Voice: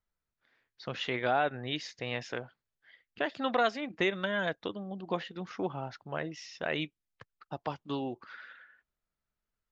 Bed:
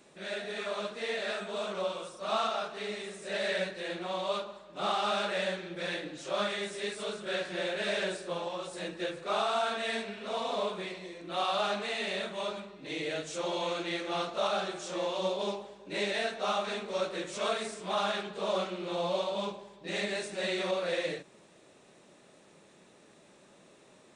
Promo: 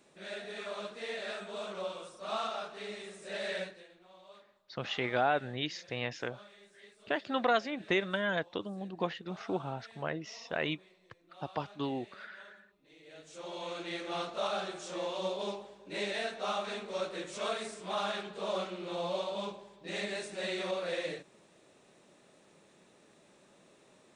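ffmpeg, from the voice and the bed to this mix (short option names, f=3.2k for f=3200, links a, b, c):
-filter_complex "[0:a]adelay=3900,volume=-0.5dB[a];[1:a]volume=14.5dB,afade=t=out:st=3.58:d=0.3:silence=0.125893,afade=t=in:st=13.03:d=1.04:silence=0.105925[b];[a][b]amix=inputs=2:normalize=0"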